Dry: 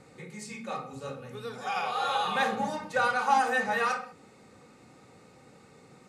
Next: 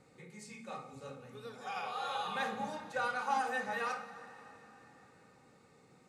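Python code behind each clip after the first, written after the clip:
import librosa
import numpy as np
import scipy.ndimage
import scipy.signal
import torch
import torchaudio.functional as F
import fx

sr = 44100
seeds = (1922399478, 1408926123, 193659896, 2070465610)

y = fx.rev_plate(x, sr, seeds[0], rt60_s=3.9, hf_ratio=0.9, predelay_ms=0, drr_db=11.5)
y = y * 10.0 ** (-9.0 / 20.0)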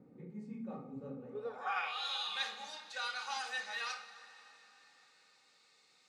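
y = fx.filter_sweep_bandpass(x, sr, from_hz=240.0, to_hz=4200.0, start_s=1.17, end_s=2.07, q=1.8)
y = fx.attack_slew(y, sr, db_per_s=320.0)
y = y * 10.0 ** (9.5 / 20.0)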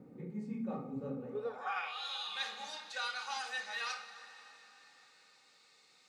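y = fx.rider(x, sr, range_db=4, speed_s=0.5)
y = y * 10.0 ** (1.0 / 20.0)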